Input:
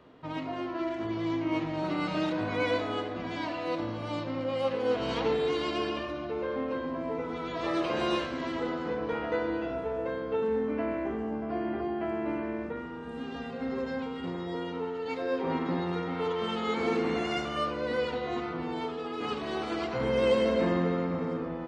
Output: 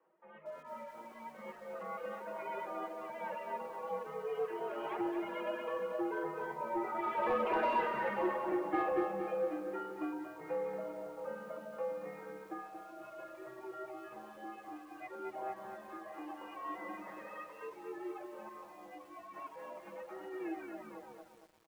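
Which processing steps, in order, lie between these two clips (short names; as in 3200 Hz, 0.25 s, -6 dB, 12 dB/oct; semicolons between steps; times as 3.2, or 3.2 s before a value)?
tape stop at the end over 1.50 s; Doppler pass-by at 7.92, 17 m/s, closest 8.5 m; tilt -4.5 dB/oct; compressor 2:1, threshold -42 dBFS, peak gain reduction 12.5 dB; comb 6.6 ms, depth 80%; AGC gain up to 6.5 dB; reverb removal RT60 2 s; mistuned SSB -120 Hz 570–3000 Hz; overdrive pedal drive 12 dB, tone 1600 Hz, clips at -27.5 dBFS; lo-fi delay 0.23 s, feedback 55%, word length 11-bit, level -7 dB; gain +5 dB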